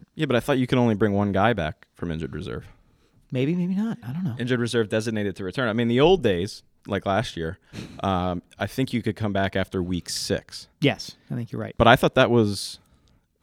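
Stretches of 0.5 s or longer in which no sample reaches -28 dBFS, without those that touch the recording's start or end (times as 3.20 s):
2.59–3.33 s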